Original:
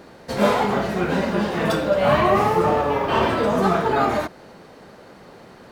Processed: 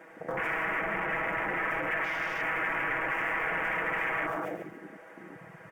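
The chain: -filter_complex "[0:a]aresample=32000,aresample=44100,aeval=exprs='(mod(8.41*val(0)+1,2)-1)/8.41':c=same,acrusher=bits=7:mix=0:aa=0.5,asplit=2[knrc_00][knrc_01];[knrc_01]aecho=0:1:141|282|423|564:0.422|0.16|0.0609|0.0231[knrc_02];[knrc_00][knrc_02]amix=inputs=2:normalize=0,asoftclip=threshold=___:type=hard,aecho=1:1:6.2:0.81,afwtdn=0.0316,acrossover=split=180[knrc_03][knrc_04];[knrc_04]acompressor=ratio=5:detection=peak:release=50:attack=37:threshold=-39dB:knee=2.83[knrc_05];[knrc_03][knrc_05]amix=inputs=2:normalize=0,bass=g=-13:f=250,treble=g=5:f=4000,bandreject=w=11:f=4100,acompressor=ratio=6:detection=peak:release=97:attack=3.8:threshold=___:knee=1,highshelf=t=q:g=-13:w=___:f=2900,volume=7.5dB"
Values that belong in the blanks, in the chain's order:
-29dB, -38dB, 3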